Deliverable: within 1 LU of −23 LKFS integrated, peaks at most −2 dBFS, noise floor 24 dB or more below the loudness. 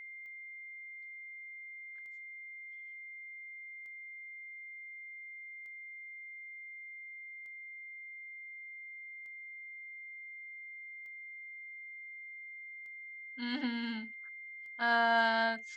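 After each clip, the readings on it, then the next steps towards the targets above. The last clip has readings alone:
number of clicks 9; interfering tone 2,100 Hz; level of the tone −45 dBFS; integrated loudness −40.0 LKFS; sample peak −17.5 dBFS; target loudness −23.0 LKFS
→ click removal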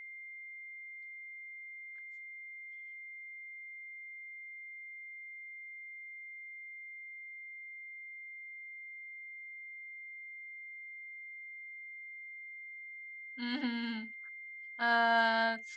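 number of clicks 0; interfering tone 2,100 Hz; level of the tone −45 dBFS
→ notch filter 2,100 Hz, Q 30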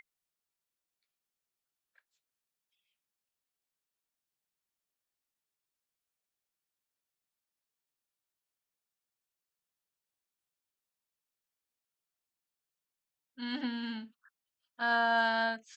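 interfering tone none found; integrated loudness −31.5 LKFS; sample peak −18.0 dBFS; target loudness −23.0 LKFS
→ level +8.5 dB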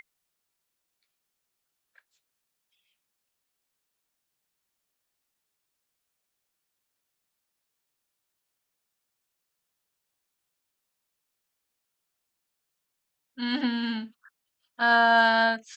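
integrated loudness −23.0 LKFS; sample peak −9.5 dBFS; background noise floor −82 dBFS

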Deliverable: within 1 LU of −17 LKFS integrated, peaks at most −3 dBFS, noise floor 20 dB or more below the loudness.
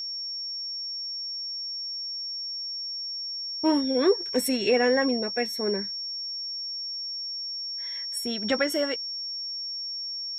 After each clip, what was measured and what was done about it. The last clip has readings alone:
crackle rate 27 per second; interfering tone 5,500 Hz; level of the tone −31 dBFS; integrated loudness −27.5 LKFS; sample peak −11.5 dBFS; target loudness −17.0 LKFS
→ click removal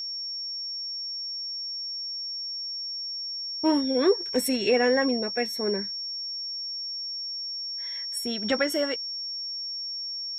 crackle rate 0.096 per second; interfering tone 5,500 Hz; level of the tone −31 dBFS
→ notch filter 5,500 Hz, Q 30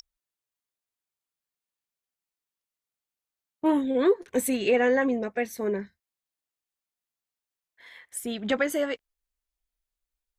interfering tone none found; integrated loudness −26.0 LKFS; sample peak −12.5 dBFS; target loudness −17.0 LKFS
→ level +9 dB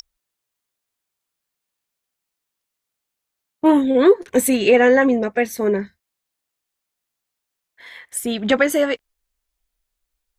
integrated loudness −17.0 LKFS; sample peak −3.5 dBFS; background noise floor −82 dBFS

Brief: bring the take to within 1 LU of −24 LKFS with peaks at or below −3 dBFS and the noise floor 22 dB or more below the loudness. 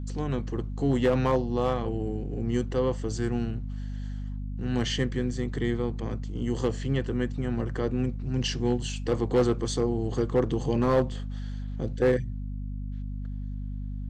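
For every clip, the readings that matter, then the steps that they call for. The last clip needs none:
share of clipped samples 0.4%; peaks flattened at −16.0 dBFS; mains hum 50 Hz; hum harmonics up to 250 Hz; level of the hum −31 dBFS; integrated loudness −29.0 LKFS; sample peak −16.0 dBFS; target loudness −24.0 LKFS
→ clipped peaks rebuilt −16 dBFS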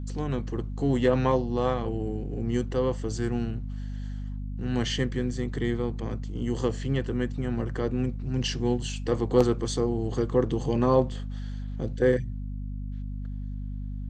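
share of clipped samples 0.0%; mains hum 50 Hz; hum harmonics up to 250 Hz; level of the hum −31 dBFS
→ hum removal 50 Hz, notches 5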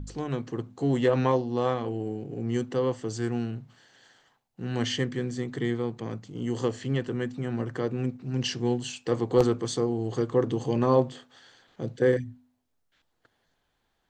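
mains hum none found; integrated loudness −28.5 LKFS; sample peak −8.0 dBFS; target loudness −24.0 LKFS
→ level +4.5 dB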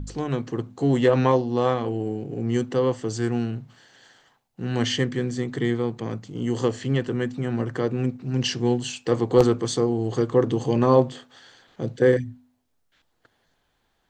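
integrated loudness −24.0 LKFS; sample peak −3.5 dBFS; background noise floor −71 dBFS

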